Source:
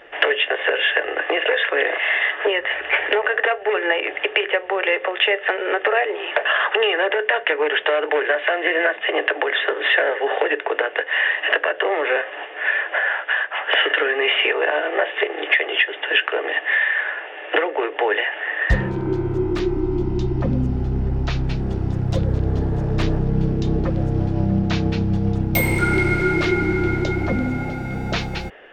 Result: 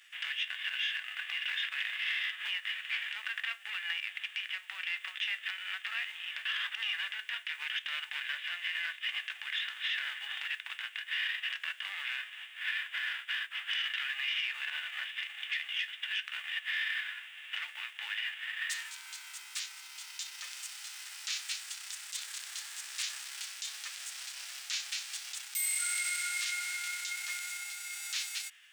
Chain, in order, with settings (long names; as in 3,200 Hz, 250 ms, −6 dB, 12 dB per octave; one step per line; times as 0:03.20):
spectral envelope flattened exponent 0.6
Bessel high-pass filter 2,700 Hz, order 4
parametric band 8,200 Hz +9.5 dB 0.68 octaves
brickwall limiter −17 dBFS, peak gain reduction 12 dB
level −7 dB